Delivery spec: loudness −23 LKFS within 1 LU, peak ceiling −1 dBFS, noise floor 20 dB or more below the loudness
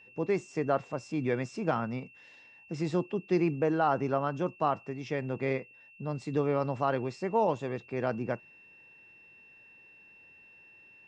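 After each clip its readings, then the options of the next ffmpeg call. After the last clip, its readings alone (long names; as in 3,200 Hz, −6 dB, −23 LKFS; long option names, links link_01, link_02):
interfering tone 2,700 Hz; level of the tone −54 dBFS; integrated loudness −31.5 LKFS; sample peak −13.5 dBFS; target loudness −23.0 LKFS
→ -af "bandreject=frequency=2700:width=30"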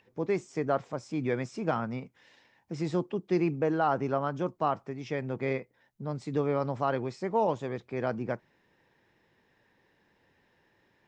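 interfering tone none found; integrated loudness −31.5 LKFS; sample peak −13.5 dBFS; target loudness −23.0 LKFS
→ -af "volume=8.5dB"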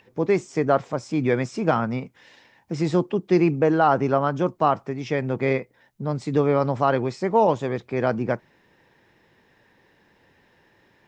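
integrated loudness −23.0 LKFS; sample peak −5.0 dBFS; background noise floor −61 dBFS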